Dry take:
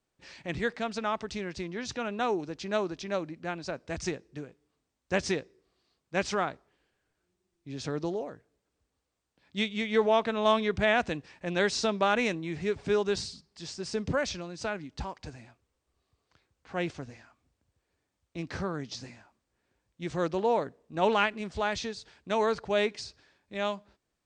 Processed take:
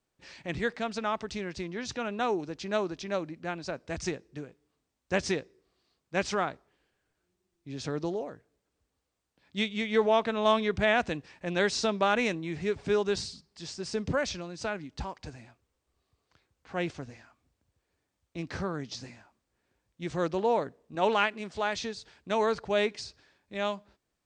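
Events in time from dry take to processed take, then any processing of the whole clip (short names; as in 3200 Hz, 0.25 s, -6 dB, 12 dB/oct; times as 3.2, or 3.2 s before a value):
20.95–21.79 HPF 210 Hz 6 dB/oct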